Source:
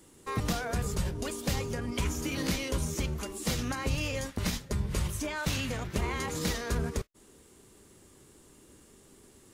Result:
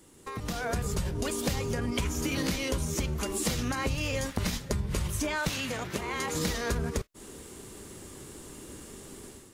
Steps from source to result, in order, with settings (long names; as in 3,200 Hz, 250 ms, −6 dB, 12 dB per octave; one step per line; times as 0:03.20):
0:03.93–0:04.35: surface crackle 250 per second → 82 per second −45 dBFS
downward compressor 6 to 1, threshold −39 dBFS, peak gain reduction 13.5 dB
0:05.49–0:06.35: high-pass filter 260 Hz 6 dB per octave
automatic gain control gain up to 11.5 dB